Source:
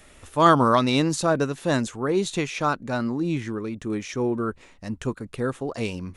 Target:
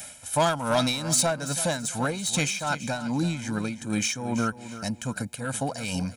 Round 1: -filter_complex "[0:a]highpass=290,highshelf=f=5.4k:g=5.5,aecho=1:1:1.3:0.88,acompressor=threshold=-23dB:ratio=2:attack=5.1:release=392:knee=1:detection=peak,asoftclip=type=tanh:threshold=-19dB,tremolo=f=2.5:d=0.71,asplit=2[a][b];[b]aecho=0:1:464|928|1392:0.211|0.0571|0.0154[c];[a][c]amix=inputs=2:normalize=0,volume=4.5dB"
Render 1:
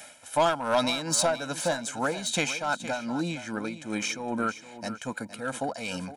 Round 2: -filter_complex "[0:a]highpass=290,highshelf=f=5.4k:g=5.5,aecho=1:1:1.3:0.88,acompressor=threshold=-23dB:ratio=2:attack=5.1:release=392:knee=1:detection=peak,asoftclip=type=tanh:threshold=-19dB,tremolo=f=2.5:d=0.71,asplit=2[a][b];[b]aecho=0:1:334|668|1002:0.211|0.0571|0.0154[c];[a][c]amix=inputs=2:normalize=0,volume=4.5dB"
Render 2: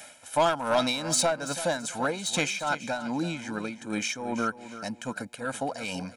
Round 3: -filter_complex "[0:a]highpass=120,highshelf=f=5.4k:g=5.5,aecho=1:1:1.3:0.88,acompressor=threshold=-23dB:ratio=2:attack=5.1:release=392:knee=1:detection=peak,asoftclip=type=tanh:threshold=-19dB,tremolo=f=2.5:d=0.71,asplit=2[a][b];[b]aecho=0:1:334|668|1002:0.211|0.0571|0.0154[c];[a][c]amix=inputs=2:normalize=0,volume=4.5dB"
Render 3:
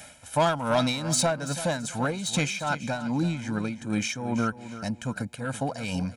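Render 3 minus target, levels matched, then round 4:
8000 Hz band -3.5 dB
-filter_complex "[0:a]highpass=120,highshelf=f=5.4k:g=17.5,aecho=1:1:1.3:0.88,acompressor=threshold=-23dB:ratio=2:attack=5.1:release=392:knee=1:detection=peak,asoftclip=type=tanh:threshold=-19dB,tremolo=f=2.5:d=0.71,asplit=2[a][b];[b]aecho=0:1:334|668|1002:0.211|0.0571|0.0154[c];[a][c]amix=inputs=2:normalize=0,volume=4.5dB"

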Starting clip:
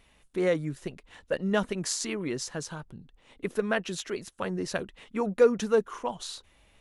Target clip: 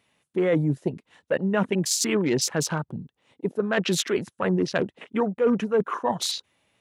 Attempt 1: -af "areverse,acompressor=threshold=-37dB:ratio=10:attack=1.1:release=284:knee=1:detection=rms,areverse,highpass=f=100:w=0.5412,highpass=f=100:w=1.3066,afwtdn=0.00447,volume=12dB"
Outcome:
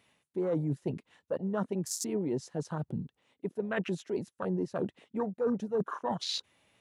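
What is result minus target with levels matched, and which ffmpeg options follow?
compressor: peak gain reduction +8.5 dB
-af "areverse,acompressor=threshold=-27.5dB:ratio=10:attack=1.1:release=284:knee=1:detection=rms,areverse,highpass=f=100:w=0.5412,highpass=f=100:w=1.3066,afwtdn=0.00447,volume=12dB"

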